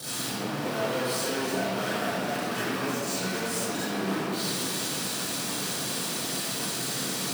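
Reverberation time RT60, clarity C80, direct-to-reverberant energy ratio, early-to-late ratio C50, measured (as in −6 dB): 2.0 s, −3.0 dB, −13.0 dB, −7.5 dB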